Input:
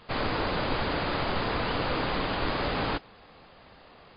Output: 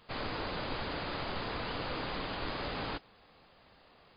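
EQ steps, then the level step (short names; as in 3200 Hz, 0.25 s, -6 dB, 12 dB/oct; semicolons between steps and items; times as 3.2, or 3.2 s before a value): high shelf 4500 Hz +6.5 dB; -9.0 dB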